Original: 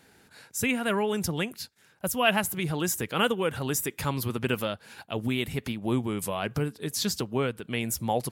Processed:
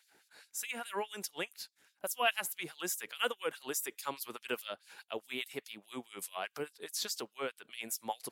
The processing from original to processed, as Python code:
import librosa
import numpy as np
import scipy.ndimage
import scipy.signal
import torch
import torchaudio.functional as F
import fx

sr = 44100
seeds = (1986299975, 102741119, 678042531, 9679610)

y = fx.add_hum(x, sr, base_hz=60, snr_db=28)
y = fx.filter_lfo_highpass(y, sr, shape='sine', hz=4.8, low_hz=360.0, high_hz=5000.0, q=1.0)
y = F.gain(torch.from_numpy(y), -7.0).numpy()